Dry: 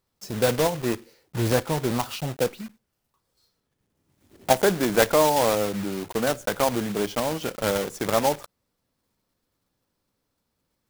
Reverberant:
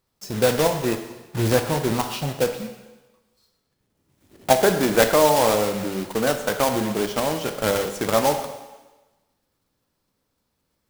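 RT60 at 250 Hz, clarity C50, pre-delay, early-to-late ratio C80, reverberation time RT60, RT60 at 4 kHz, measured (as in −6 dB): 1.2 s, 8.5 dB, 12 ms, 10.0 dB, 1.2 s, 1.2 s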